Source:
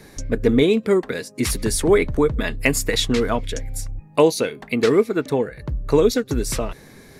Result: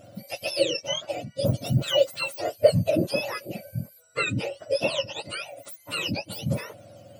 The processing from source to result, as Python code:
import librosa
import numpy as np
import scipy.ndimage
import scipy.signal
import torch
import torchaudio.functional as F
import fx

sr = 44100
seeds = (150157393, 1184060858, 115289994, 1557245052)

y = fx.octave_mirror(x, sr, pivot_hz=1100.0)
y = fx.peak_eq(y, sr, hz=550.0, db=13.5, octaves=0.35)
y = fx.small_body(y, sr, hz=(630.0, 1400.0), ring_ms=25, db=8)
y = y * librosa.db_to_amplitude(-8.5)